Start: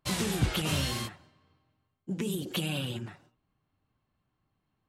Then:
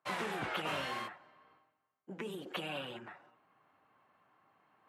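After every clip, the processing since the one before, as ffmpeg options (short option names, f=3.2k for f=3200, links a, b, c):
-filter_complex "[0:a]highpass=200,areverse,acompressor=mode=upward:threshold=-54dB:ratio=2.5,areverse,acrossover=split=540 2300:gain=0.2 1 0.0891[a][b][c];[a][b][c]amix=inputs=3:normalize=0,volume=2.5dB"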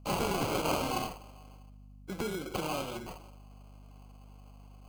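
-filter_complex "[0:a]acrossover=split=130|3400[a][b][c];[b]acrusher=samples=24:mix=1:aa=0.000001[d];[c]alimiter=level_in=23dB:limit=-24dB:level=0:latency=1,volume=-23dB[e];[a][d][e]amix=inputs=3:normalize=0,aeval=exprs='val(0)+0.00126*(sin(2*PI*50*n/s)+sin(2*PI*2*50*n/s)/2+sin(2*PI*3*50*n/s)/3+sin(2*PI*4*50*n/s)/4+sin(2*PI*5*50*n/s)/5)':c=same,volume=7dB"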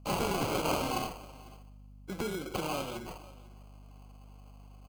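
-af "aecho=1:1:498:0.0794"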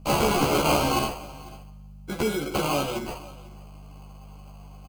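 -filter_complex "[0:a]asplit=2[a][b];[b]adelay=14,volume=-2dB[c];[a][c]amix=inputs=2:normalize=0,volume=7dB"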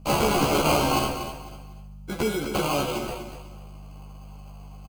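-af "aecho=1:1:241:0.335"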